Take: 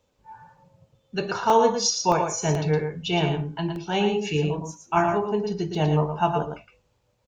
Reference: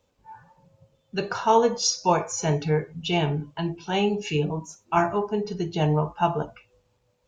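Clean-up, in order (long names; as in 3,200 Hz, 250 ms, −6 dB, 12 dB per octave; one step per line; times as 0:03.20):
repair the gap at 0:01.50/0:02.12/0:02.55/0:03.76/0:05.75, 1 ms
echo removal 114 ms −6.5 dB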